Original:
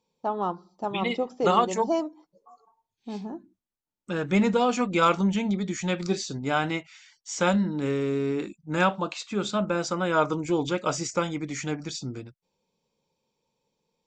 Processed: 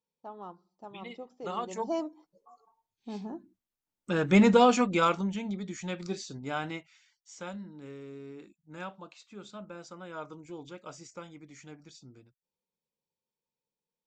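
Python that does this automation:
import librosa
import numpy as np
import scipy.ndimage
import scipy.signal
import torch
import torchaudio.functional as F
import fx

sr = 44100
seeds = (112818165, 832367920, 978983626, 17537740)

y = fx.gain(x, sr, db=fx.line((1.44, -16.0), (2.05, -4.0), (3.15, -4.0), (4.64, 3.0), (5.3, -8.5), (6.7, -8.5), (7.5, -18.0)))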